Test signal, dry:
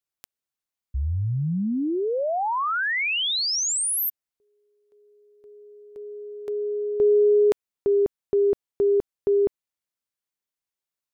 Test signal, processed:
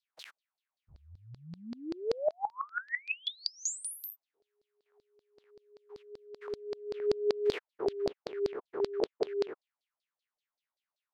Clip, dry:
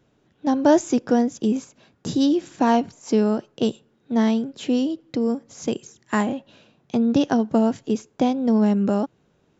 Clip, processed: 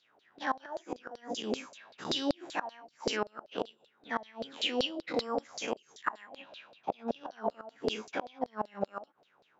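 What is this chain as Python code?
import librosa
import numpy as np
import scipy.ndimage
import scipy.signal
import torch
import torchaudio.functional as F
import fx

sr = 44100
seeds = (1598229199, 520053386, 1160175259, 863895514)

y = fx.spec_dilate(x, sr, span_ms=120)
y = fx.filter_lfo_bandpass(y, sr, shape='saw_down', hz=5.2, low_hz=560.0, high_hz=4600.0, q=5.6)
y = fx.gate_flip(y, sr, shuts_db=-25.0, range_db=-25)
y = y * librosa.db_to_amplitude(7.5)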